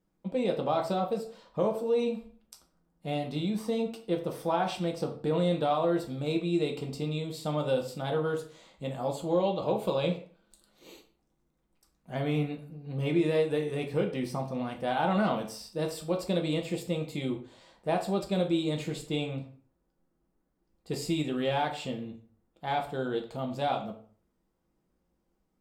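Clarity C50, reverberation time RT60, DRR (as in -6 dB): 10.5 dB, 0.45 s, 2.0 dB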